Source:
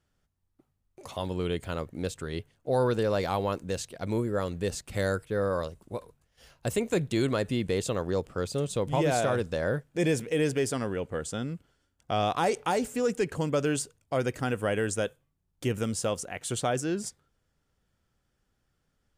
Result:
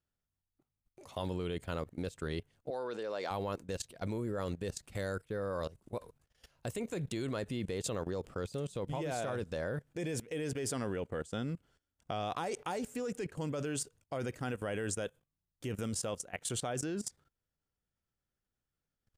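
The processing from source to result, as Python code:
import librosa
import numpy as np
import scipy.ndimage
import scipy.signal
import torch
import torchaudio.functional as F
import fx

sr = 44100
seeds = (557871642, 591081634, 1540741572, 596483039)

y = fx.level_steps(x, sr, step_db=18)
y = fx.bandpass_edges(y, sr, low_hz=350.0, high_hz=7200.0, at=(2.7, 3.31))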